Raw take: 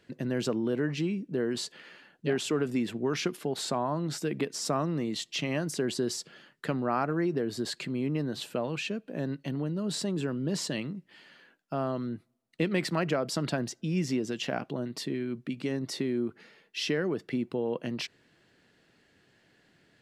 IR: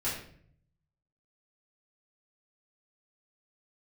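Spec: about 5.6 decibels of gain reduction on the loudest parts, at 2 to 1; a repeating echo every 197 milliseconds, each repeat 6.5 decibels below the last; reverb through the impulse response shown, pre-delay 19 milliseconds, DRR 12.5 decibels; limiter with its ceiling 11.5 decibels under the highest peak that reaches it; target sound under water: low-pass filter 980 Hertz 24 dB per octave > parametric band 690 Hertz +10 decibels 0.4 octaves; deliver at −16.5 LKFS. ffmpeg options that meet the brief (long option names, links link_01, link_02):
-filter_complex "[0:a]acompressor=threshold=-34dB:ratio=2,alimiter=level_in=7dB:limit=-24dB:level=0:latency=1,volume=-7dB,aecho=1:1:197|394|591|788|985|1182:0.473|0.222|0.105|0.0491|0.0231|0.0109,asplit=2[link_01][link_02];[1:a]atrim=start_sample=2205,adelay=19[link_03];[link_02][link_03]afir=irnorm=-1:irlink=0,volume=-18.5dB[link_04];[link_01][link_04]amix=inputs=2:normalize=0,lowpass=frequency=980:width=0.5412,lowpass=frequency=980:width=1.3066,equalizer=frequency=690:width_type=o:width=0.4:gain=10,volume=22.5dB"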